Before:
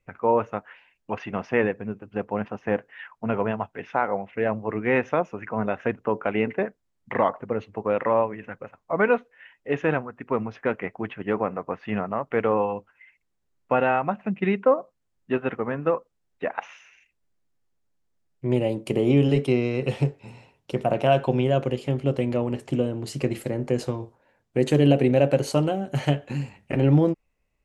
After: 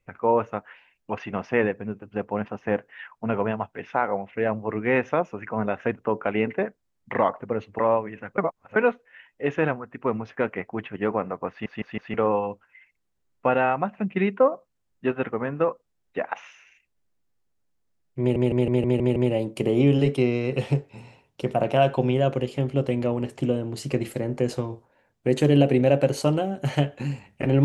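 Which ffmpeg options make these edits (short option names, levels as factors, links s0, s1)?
-filter_complex "[0:a]asplit=14[s0][s1][s2][s3][s4][s5][s6][s7][s8][s9][s10][s11][s12][s13];[s0]atrim=end=7.792[s14];[s1]atrim=start=8.048:end=8.642[s15];[s2]atrim=start=8.638:end=9.022,asetpts=PTS-STARTPTS,areverse[s16];[s3]atrim=start=9.018:end=11.922[s17];[s4]atrim=start=11.758:end=11.922[s18];[s5]atrim=start=11.758:end=11.922[s19];[s6]atrim=start=11.758:end=11.922[s20];[s7]atrim=start=12.398:end=18.622[s21];[s8]atrim=start=18.458:end=18.622[s22];[s9]atrim=start=18.458:end=18.622[s23];[s10]atrim=start=18.458:end=18.622[s24];[s11]atrim=start=18.458:end=18.622[s25];[s12]atrim=start=18.458:end=18.622[s26];[s13]atrim=start=18.458[s27];[s14][s15]acrossfade=d=0.004:c1=hsin:c2=hsin[s28];[s28][s16]acrossfade=d=0.004:c1=hsin:c2=hsin[s29];[s29][s17]acrossfade=d=0.004:c1=hsin:c2=hsin[s30];[s30][s18]acrossfade=d=0.004:c1=hsin:c2=hsin[s31];[s31][s19]acrossfade=d=0.004:c1=hsin:c2=hsin[s32];[s32][s20]acrossfade=d=0.004:c1=hsin:c2=hsin[s33];[s33][s21]acrossfade=d=0.004:c1=hsin:c2=hsin[s34];[s34][s22]acrossfade=d=0.004:c1=hsin:c2=hsin[s35];[s35][s23]acrossfade=d=0.004:c1=hsin:c2=hsin[s36];[s36][s24]acrossfade=d=0.004:c1=hsin:c2=hsin[s37];[s37][s25]acrossfade=d=0.004:c1=hsin:c2=hsin[s38];[s38][s26]acrossfade=d=0.004:c1=hsin:c2=hsin[s39];[s39][s27]acrossfade=d=0.004:c1=hsin:c2=hsin"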